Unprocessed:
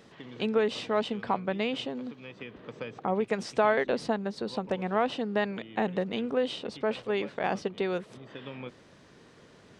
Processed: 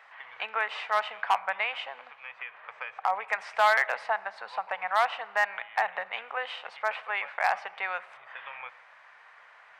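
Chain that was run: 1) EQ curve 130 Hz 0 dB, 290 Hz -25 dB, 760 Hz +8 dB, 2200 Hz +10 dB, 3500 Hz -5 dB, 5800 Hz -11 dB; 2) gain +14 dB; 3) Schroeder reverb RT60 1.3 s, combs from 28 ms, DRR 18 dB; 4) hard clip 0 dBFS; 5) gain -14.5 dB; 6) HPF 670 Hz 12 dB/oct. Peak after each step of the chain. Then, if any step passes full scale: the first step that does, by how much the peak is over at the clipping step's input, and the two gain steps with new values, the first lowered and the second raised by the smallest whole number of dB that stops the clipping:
-7.0, +7.0, +6.5, 0.0, -14.5, -10.5 dBFS; step 2, 6.5 dB; step 2 +7 dB, step 5 -7.5 dB

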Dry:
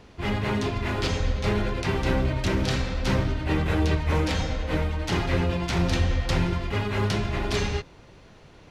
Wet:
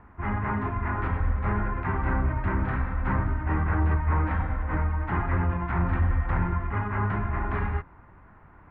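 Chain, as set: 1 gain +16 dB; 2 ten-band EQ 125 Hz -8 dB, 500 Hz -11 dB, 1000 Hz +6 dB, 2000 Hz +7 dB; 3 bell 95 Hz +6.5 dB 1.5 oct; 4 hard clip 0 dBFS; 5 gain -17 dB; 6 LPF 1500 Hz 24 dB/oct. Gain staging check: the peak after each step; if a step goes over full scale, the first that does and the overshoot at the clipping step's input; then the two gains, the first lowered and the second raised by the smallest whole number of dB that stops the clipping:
+5.0, +4.5, +6.5, 0.0, -17.0, -16.0 dBFS; step 1, 6.5 dB; step 1 +9 dB, step 5 -10 dB

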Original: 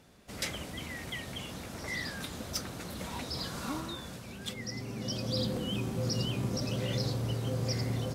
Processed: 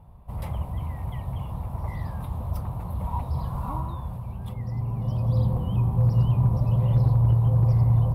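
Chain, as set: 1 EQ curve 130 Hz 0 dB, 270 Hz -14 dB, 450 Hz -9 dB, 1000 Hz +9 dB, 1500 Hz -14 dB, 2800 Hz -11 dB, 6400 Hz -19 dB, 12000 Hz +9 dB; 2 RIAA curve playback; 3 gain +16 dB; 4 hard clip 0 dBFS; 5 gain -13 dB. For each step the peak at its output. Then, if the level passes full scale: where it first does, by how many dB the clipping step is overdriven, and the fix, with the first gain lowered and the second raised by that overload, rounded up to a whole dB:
-23.5, -13.0, +3.0, 0.0, -13.0 dBFS; step 3, 3.0 dB; step 3 +13 dB, step 5 -10 dB

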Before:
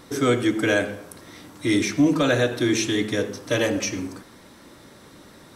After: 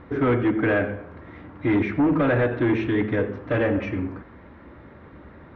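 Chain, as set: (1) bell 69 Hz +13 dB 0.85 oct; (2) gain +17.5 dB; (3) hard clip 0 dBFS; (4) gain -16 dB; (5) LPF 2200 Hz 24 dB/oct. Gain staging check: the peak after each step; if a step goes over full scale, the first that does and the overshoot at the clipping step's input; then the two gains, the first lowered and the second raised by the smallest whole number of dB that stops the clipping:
-9.0, +8.5, 0.0, -16.0, -14.0 dBFS; step 2, 8.5 dB; step 2 +8.5 dB, step 4 -7 dB

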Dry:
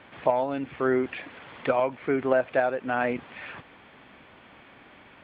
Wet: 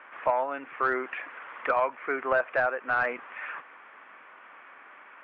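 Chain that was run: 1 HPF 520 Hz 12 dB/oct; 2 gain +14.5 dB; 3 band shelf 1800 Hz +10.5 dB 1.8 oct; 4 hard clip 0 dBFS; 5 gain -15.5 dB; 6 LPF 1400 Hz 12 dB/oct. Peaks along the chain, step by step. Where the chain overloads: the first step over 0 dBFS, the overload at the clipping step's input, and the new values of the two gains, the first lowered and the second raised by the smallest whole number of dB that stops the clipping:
-10.0, +4.5, +9.0, 0.0, -15.5, -15.0 dBFS; step 2, 9.0 dB; step 2 +5.5 dB, step 5 -6.5 dB

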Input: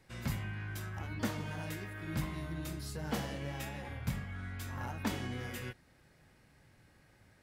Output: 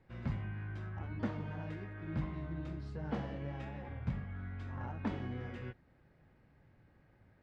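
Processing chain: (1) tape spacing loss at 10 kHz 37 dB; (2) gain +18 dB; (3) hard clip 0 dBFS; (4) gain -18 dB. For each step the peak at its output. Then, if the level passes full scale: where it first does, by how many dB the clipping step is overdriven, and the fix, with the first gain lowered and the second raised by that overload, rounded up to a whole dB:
-24.0, -6.0, -6.0, -24.0 dBFS; no overload

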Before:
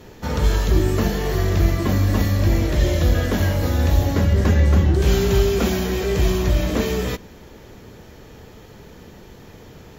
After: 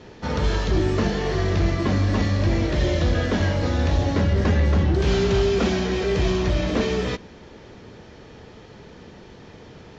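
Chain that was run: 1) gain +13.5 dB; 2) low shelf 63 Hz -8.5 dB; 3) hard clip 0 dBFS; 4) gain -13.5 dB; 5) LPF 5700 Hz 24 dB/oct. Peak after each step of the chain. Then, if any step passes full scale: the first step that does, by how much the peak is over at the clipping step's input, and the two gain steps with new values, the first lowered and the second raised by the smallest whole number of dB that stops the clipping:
+8.0, +6.5, 0.0, -13.5, -13.0 dBFS; step 1, 6.5 dB; step 1 +6.5 dB, step 4 -6.5 dB

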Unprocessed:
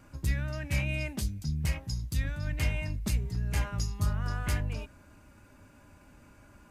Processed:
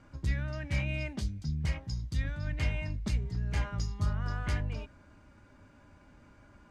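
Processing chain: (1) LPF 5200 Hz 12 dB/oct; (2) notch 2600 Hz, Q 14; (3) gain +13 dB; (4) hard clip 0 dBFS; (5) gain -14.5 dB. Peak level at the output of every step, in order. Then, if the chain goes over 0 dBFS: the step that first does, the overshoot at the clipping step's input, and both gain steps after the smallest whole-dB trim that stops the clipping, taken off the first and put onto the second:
-18.5, -18.0, -5.0, -5.0, -19.5 dBFS; no overload

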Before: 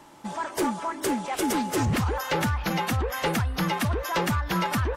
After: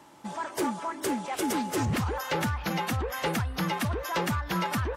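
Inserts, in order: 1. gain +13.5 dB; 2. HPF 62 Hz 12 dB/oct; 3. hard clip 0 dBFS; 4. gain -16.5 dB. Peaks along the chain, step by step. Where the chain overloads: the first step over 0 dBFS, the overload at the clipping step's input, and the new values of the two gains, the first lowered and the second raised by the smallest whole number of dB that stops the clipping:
-5.5, -2.5, -2.5, -19.0 dBFS; no overload

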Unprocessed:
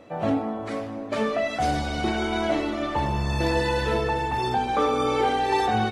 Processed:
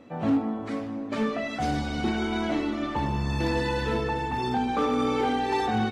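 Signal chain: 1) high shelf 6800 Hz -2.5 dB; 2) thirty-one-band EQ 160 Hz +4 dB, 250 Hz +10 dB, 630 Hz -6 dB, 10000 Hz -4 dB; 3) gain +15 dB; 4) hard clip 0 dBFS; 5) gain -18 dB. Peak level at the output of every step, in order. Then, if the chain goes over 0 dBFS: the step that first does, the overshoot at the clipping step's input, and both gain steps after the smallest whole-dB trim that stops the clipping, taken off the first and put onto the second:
-11.5, -10.5, +4.5, 0.0, -18.0 dBFS; step 3, 4.5 dB; step 3 +10 dB, step 5 -13 dB

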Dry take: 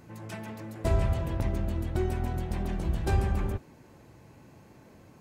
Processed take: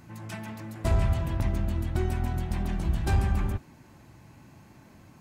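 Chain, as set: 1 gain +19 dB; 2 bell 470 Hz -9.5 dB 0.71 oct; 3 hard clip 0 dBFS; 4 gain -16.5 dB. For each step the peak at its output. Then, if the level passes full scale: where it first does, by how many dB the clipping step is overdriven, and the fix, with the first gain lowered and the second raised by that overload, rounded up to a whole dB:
+5.0, +5.0, 0.0, -16.5 dBFS; step 1, 5.0 dB; step 1 +14 dB, step 4 -11.5 dB

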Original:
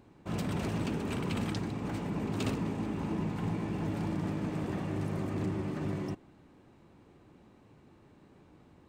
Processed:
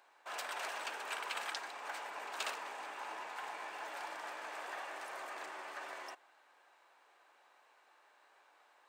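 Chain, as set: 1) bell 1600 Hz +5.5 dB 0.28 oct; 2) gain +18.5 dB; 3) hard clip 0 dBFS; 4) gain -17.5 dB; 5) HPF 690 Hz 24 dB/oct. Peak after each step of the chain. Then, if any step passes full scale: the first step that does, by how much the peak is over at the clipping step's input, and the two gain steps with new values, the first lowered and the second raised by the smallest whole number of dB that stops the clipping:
-20.0, -1.5, -1.5, -19.0, -23.0 dBFS; no overload

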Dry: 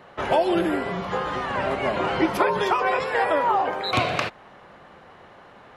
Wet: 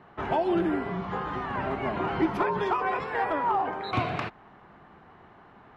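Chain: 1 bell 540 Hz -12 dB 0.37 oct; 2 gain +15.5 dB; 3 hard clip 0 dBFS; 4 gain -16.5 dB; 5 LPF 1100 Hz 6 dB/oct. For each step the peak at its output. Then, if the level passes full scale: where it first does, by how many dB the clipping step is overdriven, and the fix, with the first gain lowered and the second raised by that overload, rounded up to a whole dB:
-7.0, +8.5, 0.0, -16.5, -16.5 dBFS; step 2, 8.5 dB; step 2 +6.5 dB, step 4 -7.5 dB

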